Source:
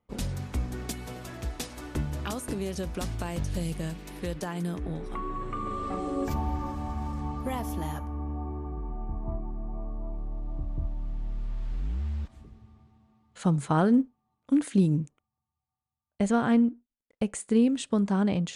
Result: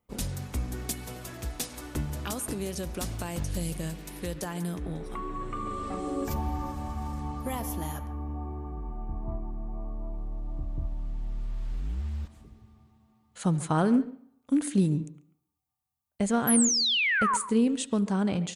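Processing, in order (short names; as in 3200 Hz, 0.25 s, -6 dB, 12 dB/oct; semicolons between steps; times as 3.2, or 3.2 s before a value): high shelf 7200 Hz +11.5 dB; painted sound fall, 16.47–17.37, 910–12000 Hz -24 dBFS; speakerphone echo 0.14 s, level -15 dB; on a send at -19 dB: reverb RT60 0.65 s, pre-delay 63 ms; on the sum: gain -1.5 dB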